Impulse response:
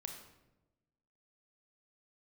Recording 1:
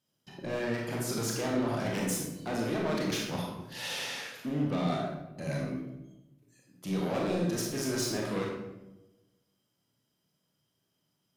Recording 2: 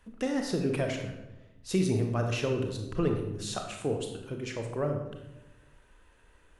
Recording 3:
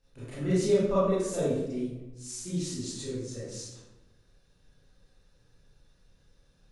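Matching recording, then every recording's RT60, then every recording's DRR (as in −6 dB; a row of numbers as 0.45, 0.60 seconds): 2; 1.0, 1.0, 1.0 seconds; −2.5, 3.0, −11.0 decibels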